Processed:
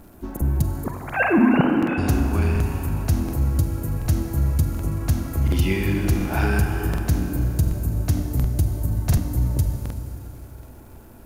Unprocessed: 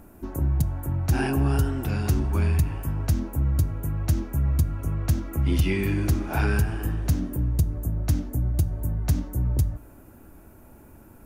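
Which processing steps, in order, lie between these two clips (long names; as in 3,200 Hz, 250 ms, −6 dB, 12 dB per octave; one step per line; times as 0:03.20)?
0:00.84–0:01.98: three sine waves on the formant tracks
surface crackle 280 per second −49 dBFS
on a send: delay with a band-pass on its return 88 ms, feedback 64%, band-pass 530 Hz, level −8.5 dB
on the sum: four-comb reverb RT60 3.3 s, combs from 32 ms, DRR 5.5 dB
regular buffer underruns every 0.73 s, samples 2,048, repeat, from 0:00.32
level +2 dB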